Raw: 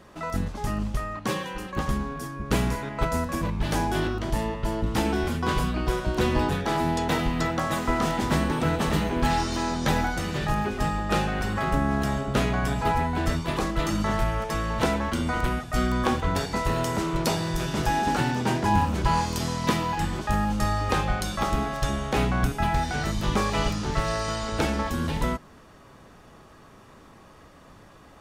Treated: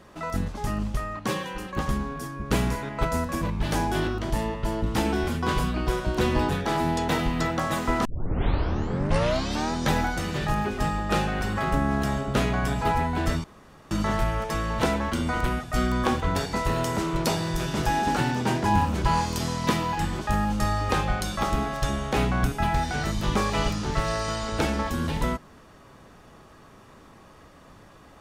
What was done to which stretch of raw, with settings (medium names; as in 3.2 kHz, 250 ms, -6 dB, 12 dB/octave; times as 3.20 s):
8.05 s: tape start 1.69 s
13.44–13.91 s: room tone